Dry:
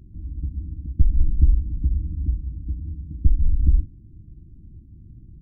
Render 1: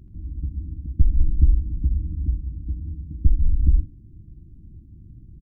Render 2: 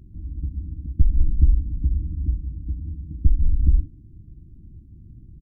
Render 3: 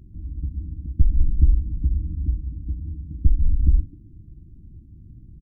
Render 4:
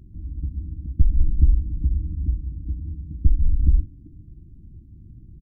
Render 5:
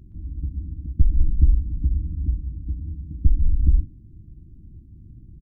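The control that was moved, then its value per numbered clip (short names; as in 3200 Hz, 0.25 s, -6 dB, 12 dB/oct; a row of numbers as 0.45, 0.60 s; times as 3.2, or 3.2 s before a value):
speakerphone echo, time: 80, 180, 260, 390, 120 ms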